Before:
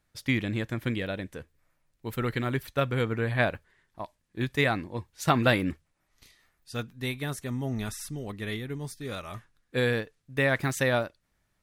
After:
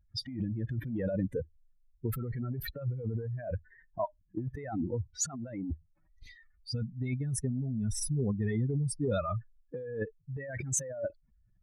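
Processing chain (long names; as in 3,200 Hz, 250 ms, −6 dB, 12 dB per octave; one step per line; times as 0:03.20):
expanding power law on the bin magnitudes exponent 3.1
compressor whose output falls as the input rises −36 dBFS, ratio −1
level +2 dB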